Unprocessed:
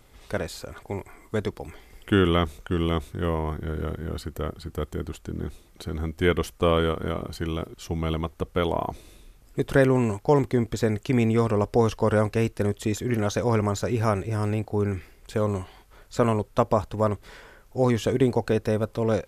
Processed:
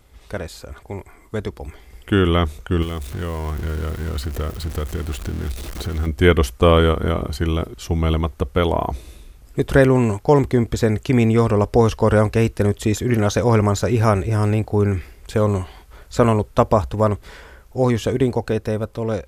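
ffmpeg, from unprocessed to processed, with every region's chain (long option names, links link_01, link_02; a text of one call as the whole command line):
ffmpeg -i in.wav -filter_complex "[0:a]asettb=1/sr,asplit=3[link_01][link_02][link_03];[link_01]atrim=end=2.824[link_04];[link_02]atrim=start=2.82:end=6.07,asetpts=PTS-STARTPTS,afade=type=in:duration=0.004:curve=qsin,afade=type=out:start_time=3.246:duration=0.004:curve=qsin,aeval=exprs='val(0)+0.5*0.0178*sgn(val(0))':channel_layout=same,bandreject=frequency=890:width=16,acrossover=split=1100|5800[link_05][link_06][link_07];[link_05]acompressor=threshold=-33dB:ratio=4[link_08];[link_06]acompressor=threshold=-42dB:ratio=4[link_09];[link_07]acompressor=threshold=-46dB:ratio=4[link_10];[link_08][link_09][link_10]amix=inputs=3:normalize=0[link_11];[link_03]atrim=start=6.066[link_12];[link_04][link_11]acrossfade=duration=0.004:curve1=hsin:curve2=qsin[link_13];[link_13][link_12]acrossfade=duration=0.004:curve1=qsin:curve2=hsin,equalizer=frequency=63:width=2.7:gain=13,dynaudnorm=framelen=730:gausssize=7:maxgain=11.5dB" out.wav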